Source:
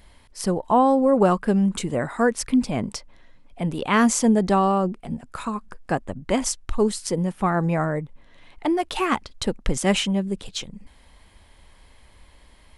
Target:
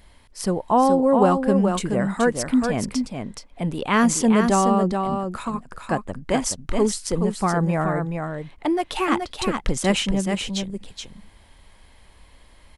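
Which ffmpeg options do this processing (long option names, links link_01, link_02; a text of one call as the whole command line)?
ffmpeg -i in.wav -af "aecho=1:1:425:0.531" out.wav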